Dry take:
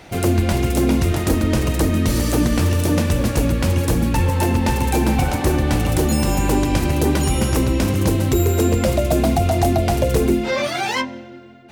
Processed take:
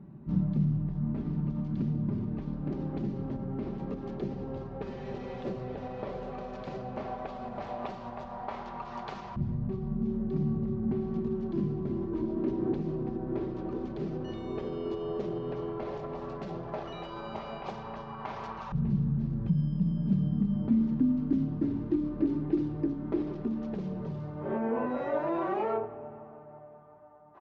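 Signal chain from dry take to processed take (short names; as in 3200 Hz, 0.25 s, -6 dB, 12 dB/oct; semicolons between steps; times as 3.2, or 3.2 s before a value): comb 2.2 ms, depth 42%; limiter -14.5 dBFS, peak gain reduction 9.5 dB; LFO band-pass saw up 0.25 Hz 390–2200 Hz; darkening echo 84 ms, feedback 61%, low-pass 4100 Hz, level -19 dB; speed mistake 78 rpm record played at 33 rpm; gain +1.5 dB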